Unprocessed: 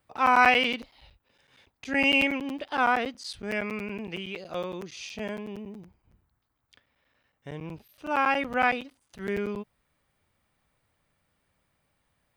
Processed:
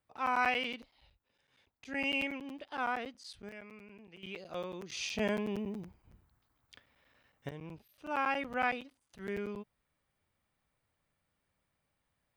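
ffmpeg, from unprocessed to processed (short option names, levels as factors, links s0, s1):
-af "asetnsamples=n=441:p=0,asendcmd='3.49 volume volume -19dB;4.23 volume volume -7dB;4.9 volume volume 2dB;7.49 volume volume -8dB',volume=0.282"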